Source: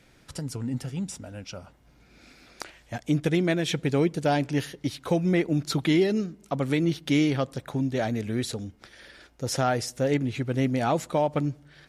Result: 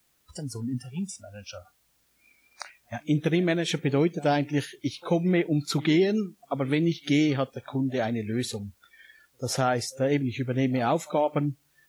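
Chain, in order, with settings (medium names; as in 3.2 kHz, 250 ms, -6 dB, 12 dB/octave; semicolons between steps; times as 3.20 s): pre-echo 90 ms -21.5 dB; word length cut 8-bit, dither triangular; spectral noise reduction 21 dB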